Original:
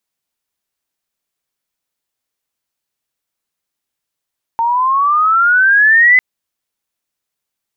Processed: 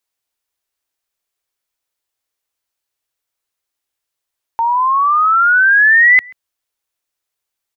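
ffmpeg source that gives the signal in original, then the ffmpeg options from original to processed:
-f lavfi -i "aevalsrc='pow(10,(-4.5+7*(t/1.6-1))/20)*sin(2*PI*908*1.6/(14*log(2)/12)*(exp(14*log(2)/12*t/1.6)-1))':d=1.6:s=44100"
-filter_complex "[0:a]equalizer=f=190:t=o:w=0.67:g=-15,asplit=2[a][b];[b]adelay=134.1,volume=-26dB,highshelf=f=4k:g=-3.02[c];[a][c]amix=inputs=2:normalize=0"

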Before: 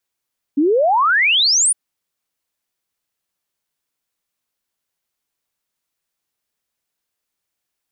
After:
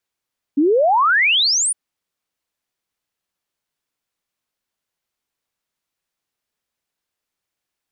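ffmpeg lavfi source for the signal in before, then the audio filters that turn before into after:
-f lavfi -i "aevalsrc='0.266*clip(min(t,1.16-t)/0.01,0,1)*sin(2*PI*270*1.16/log(10000/270)*(exp(log(10000/270)*t/1.16)-1))':d=1.16:s=44100"
-af "highshelf=f=6.9k:g=-6.5"

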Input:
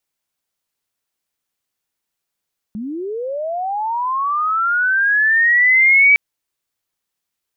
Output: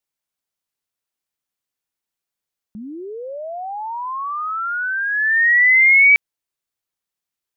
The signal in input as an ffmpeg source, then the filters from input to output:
-f lavfi -i "aevalsrc='pow(10,(-23.5+16.5*t/3.41)/20)*sin(2*PI*(200*t+2100*t*t/(2*3.41)))':d=3.41:s=44100"
-af "agate=range=-6dB:threshold=-15dB:ratio=16:detection=peak"

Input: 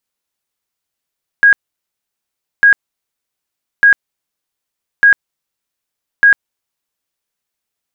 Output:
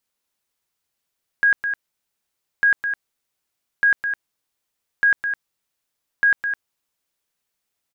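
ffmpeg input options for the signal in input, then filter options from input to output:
-f lavfi -i "aevalsrc='0.668*sin(2*PI*1640*mod(t,1.2))*lt(mod(t,1.2),162/1640)':d=6:s=44100"
-filter_complex "[0:a]alimiter=limit=-12dB:level=0:latency=1,asplit=2[a][b];[b]aecho=0:1:209:0.398[c];[a][c]amix=inputs=2:normalize=0"

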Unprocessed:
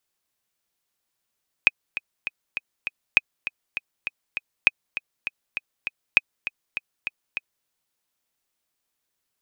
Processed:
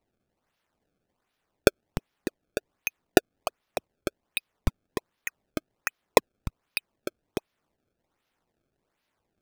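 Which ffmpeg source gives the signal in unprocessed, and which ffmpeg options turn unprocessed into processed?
-f lavfi -i "aevalsrc='pow(10,(-1-13.5*gte(mod(t,5*60/200),60/200))/20)*sin(2*PI*2510*mod(t,60/200))*exp(-6.91*mod(t,60/200)/0.03)':d=6:s=44100"
-filter_complex "[0:a]equalizer=f=2.8k:w=1.7:g=2.5,acrossover=split=190[a][b];[b]acrusher=samples=26:mix=1:aa=0.000001:lfo=1:lforange=41.6:lforate=1.3[c];[a][c]amix=inputs=2:normalize=0"

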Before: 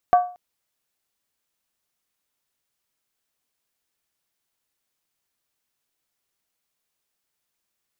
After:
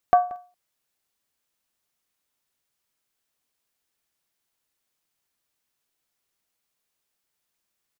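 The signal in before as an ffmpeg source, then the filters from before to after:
-f lavfi -i "aevalsrc='0.376*pow(10,-3*t/0.38)*sin(2*PI*718*t)+0.106*pow(10,-3*t/0.301)*sin(2*PI*1144.5*t)+0.0299*pow(10,-3*t/0.26)*sin(2*PI*1533.6*t)+0.00841*pow(10,-3*t/0.251)*sin(2*PI*1648.5*t)+0.00237*pow(10,-3*t/0.233)*sin(2*PI*1904.9*t)':d=0.23:s=44100"
-filter_complex "[0:a]asplit=2[a][b];[b]adelay=180.8,volume=-21dB,highshelf=f=4k:g=-4.07[c];[a][c]amix=inputs=2:normalize=0"

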